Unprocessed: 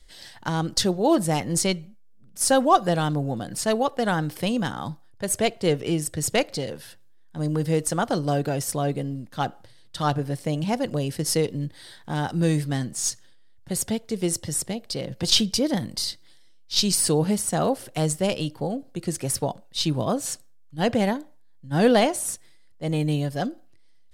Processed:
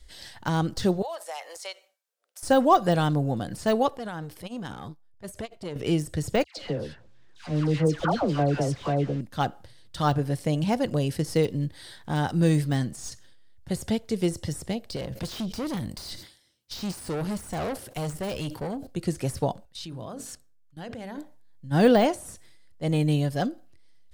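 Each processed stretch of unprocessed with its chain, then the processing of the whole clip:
1.02–2.43 steep high-pass 560 Hz + compressor 4:1, threshold -33 dBFS
3.97–5.76 compressor, threshold -30 dBFS + core saturation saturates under 490 Hz
6.44–9.21 short-mantissa float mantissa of 2-bit + air absorption 110 m + dispersion lows, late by 0.132 s, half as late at 1300 Hz
14.96–18.87 high shelf 7800 Hz +5 dB + tube stage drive 27 dB, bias 0.4 + sustainer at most 110 dB/s
19.65–21.18 notches 50/100/150/200/250/300/350/400/450 Hz + level quantiser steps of 19 dB + bell 1500 Hz +3 dB 0.64 oct
whole clip: de-esser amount 75%; bell 63 Hz +9 dB 0.96 oct

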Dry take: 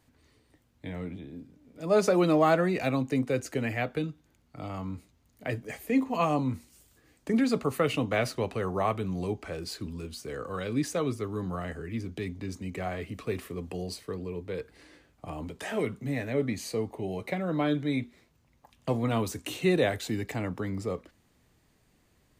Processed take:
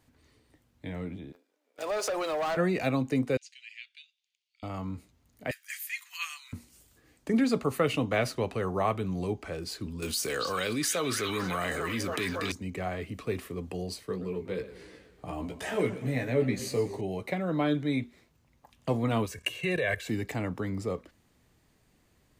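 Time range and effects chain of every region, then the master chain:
1.32–2.57 HPF 490 Hz 24 dB/oct + sample leveller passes 3 + compressor 5:1, threshold -30 dBFS
3.37–4.63 steep high-pass 2600 Hz + air absorption 130 m
5.51–6.53 steep high-pass 1500 Hz + tilt +2.5 dB/oct
10.02–12.52 tilt +3 dB/oct + delay with a stepping band-pass 0.281 s, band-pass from 3100 Hz, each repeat -0.7 oct, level -2 dB + fast leveller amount 70%
14.07–17.01 doubler 16 ms -5 dB + warbling echo 0.123 s, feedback 62%, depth 168 cents, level -14.5 dB
19.26–20.09 band shelf 2100 Hz +8.5 dB 1.1 oct + comb 1.8 ms, depth 77% + level quantiser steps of 14 dB
whole clip: dry

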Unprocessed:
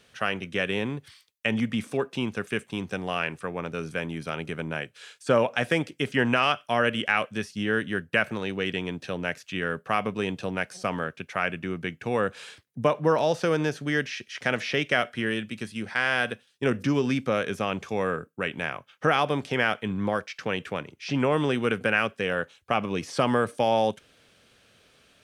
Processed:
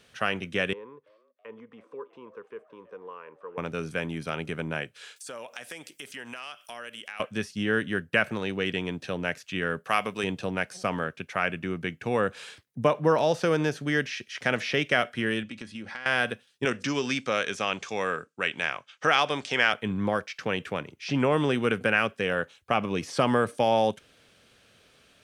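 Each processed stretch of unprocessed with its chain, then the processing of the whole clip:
0.73–3.58 compressor 1.5:1, threshold -34 dBFS + double band-pass 690 Hz, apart 1.1 oct + frequency-shifting echo 0.327 s, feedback 48%, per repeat +110 Hz, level -19 dB
5.16–7.2 RIAA curve recording + compressor 3:1, threshold -42 dBFS
9.84–10.24 de-esser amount 35% + tilt +2.5 dB/oct
15.43–16.06 LPF 6800 Hz + compressor, threshold -35 dBFS + comb 3.6 ms, depth 34%
16.65–19.73 LPF 7700 Hz 24 dB/oct + tilt +3 dB/oct
whole clip: dry

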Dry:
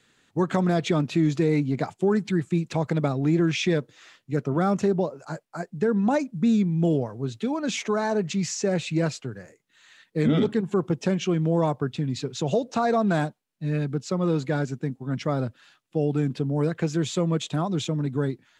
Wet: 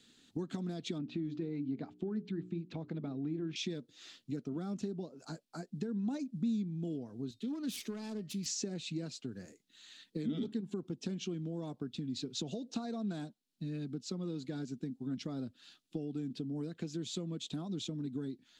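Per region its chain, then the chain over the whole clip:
0.98–3.56 LPF 2400 Hz + notches 60/120/180/240/300/360/420 Hz
7.31–8.46 self-modulated delay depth 0.16 ms + bell 710 Hz -8.5 dB 0.42 oct + resonator 610 Hz, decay 0.32 s
whole clip: notch 570 Hz, Q 12; compressor 5:1, threshold -36 dBFS; graphic EQ 125/250/500/1000/2000/4000 Hz -6/+8/-4/-8/-7/+7 dB; gain -2 dB

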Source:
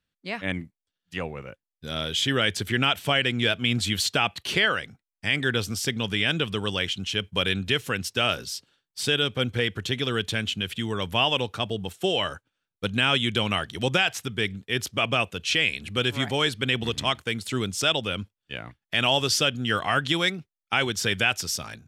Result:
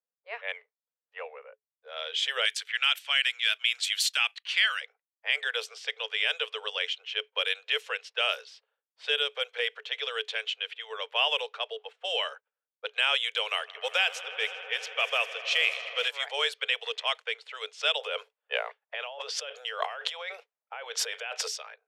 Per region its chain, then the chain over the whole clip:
2.45–4.81 gate -37 dBFS, range -6 dB + Chebyshev high-pass 1500 Hz + high shelf 5100 Hz +9 dB
13.48–16.08 short-mantissa float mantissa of 4-bit + swelling echo 80 ms, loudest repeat 5, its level -18 dB
17.98–21.48 bell 580 Hz +9 dB 2.6 oct + negative-ratio compressor -28 dBFS
whole clip: low-pass opened by the level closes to 680 Hz, open at -20 dBFS; Chebyshev high-pass 430 Hz, order 10; bell 2500 Hz +4 dB 1.3 oct; gain -5.5 dB

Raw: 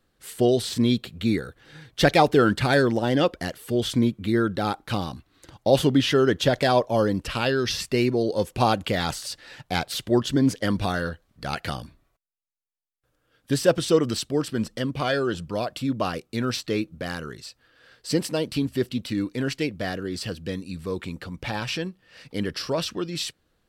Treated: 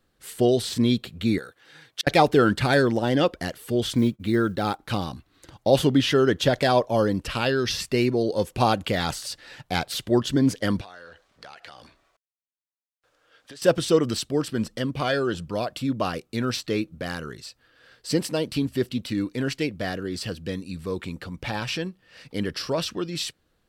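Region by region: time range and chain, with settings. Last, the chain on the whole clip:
1.38–2.07 HPF 660 Hz 6 dB/oct + flipped gate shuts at -13 dBFS, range -37 dB
3.87–4.79 block floating point 7-bit + expander -34 dBFS
10.81–13.62 G.711 law mismatch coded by mu + three-band isolator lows -17 dB, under 400 Hz, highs -16 dB, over 7900 Hz + compressor 16:1, threshold -39 dBFS
whole clip: dry

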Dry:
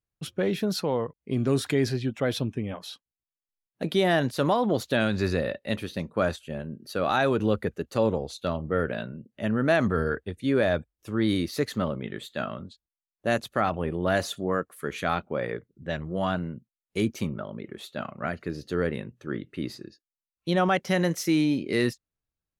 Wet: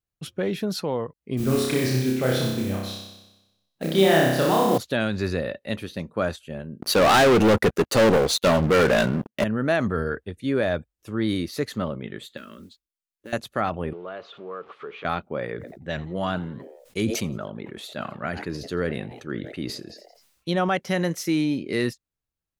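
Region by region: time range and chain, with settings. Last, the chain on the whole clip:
1.37–4.78 modulation noise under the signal 19 dB + flutter echo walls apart 5.3 m, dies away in 1 s
6.81–9.44 low shelf 130 Hz -9 dB + sample leveller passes 5
12.37–13.33 fixed phaser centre 310 Hz, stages 4 + compressor 4:1, threshold -37 dBFS + modulation noise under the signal 24 dB
13.93–15.05 zero-crossing step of -39 dBFS + compressor 2.5:1, threshold -38 dBFS + speaker cabinet 250–3300 Hz, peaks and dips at 260 Hz -8 dB, 430 Hz +7 dB, 1200 Hz +7 dB, 1800 Hz -6 dB
15.55–20.52 bell 5500 Hz +3 dB 2.8 oct + frequency-shifting echo 85 ms, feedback 50%, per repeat +120 Hz, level -22 dB + sustainer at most 57 dB/s
whole clip: dry

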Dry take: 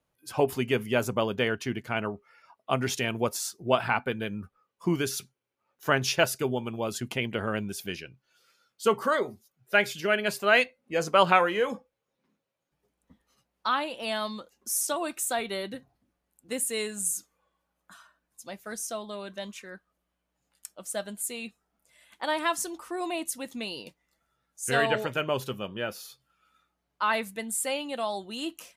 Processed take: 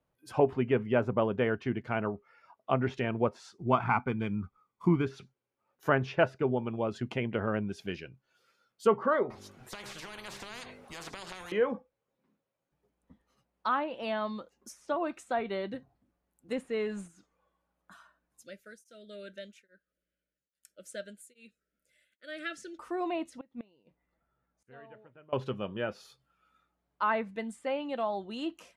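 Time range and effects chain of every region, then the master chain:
3.58–5.06 median filter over 9 samples + high shelf 4700 Hz +6 dB + comb 0.9 ms, depth 58%
9.3–11.52 notches 50/100/150/200/250/300/350/400/450 Hz + compressor 3:1, threshold -38 dBFS + spectral compressor 10:1
16.57–17.08 G.711 law mismatch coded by mu + notch 7800 Hz, Q 24
18.43–22.79 elliptic band-stop 590–1400 Hz + low shelf 350 Hz -9.5 dB + beating tremolo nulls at 1.2 Hz
23.39–25.33 flipped gate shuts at -28 dBFS, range -24 dB + air absorption 380 m
whole clip: treble ducked by the level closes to 2200 Hz, closed at -25.5 dBFS; high shelf 2500 Hz -10.5 dB

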